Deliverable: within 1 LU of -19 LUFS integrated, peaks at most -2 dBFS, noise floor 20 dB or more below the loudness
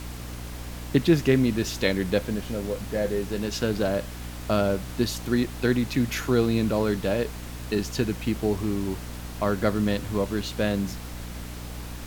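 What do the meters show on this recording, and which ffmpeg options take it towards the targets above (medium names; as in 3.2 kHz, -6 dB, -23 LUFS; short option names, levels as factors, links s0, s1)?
hum 60 Hz; highest harmonic 300 Hz; hum level -35 dBFS; noise floor -37 dBFS; noise floor target -46 dBFS; loudness -26.0 LUFS; peak level -8.0 dBFS; loudness target -19.0 LUFS
-> -af "bandreject=f=60:t=h:w=6,bandreject=f=120:t=h:w=6,bandreject=f=180:t=h:w=6,bandreject=f=240:t=h:w=6,bandreject=f=300:t=h:w=6"
-af "afftdn=nr=9:nf=-37"
-af "volume=2.24,alimiter=limit=0.794:level=0:latency=1"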